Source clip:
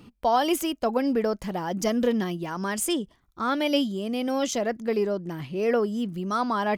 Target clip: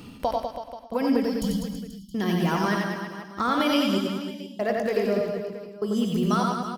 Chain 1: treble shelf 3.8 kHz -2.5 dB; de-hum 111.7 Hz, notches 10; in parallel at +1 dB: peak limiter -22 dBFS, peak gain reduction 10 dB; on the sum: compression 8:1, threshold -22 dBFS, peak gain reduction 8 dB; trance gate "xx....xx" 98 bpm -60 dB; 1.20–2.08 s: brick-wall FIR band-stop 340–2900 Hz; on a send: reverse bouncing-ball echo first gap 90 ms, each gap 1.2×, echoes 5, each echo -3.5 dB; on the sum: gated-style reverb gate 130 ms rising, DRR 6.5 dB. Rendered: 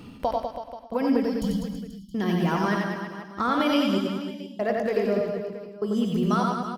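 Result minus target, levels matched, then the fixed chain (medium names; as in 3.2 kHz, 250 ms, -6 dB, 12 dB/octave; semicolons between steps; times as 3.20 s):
8 kHz band -5.0 dB
treble shelf 3.8 kHz +4.5 dB; de-hum 111.7 Hz, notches 10; in parallel at +1 dB: peak limiter -22 dBFS, peak gain reduction 11 dB; on the sum: compression 8:1, threshold -22 dBFS, peak gain reduction 8.5 dB; trance gate "xx....xx" 98 bpm -60 dB; 1.20–2.08 s: brick-wall FIR band-stop 340–2900 Hz; on a send: reverse bouncing-ball echo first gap 90 ms, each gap 1.2×, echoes 5, each echo -3.5 dB; on the sum: gated-style reverb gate 130 ms rising, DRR 6.5 dB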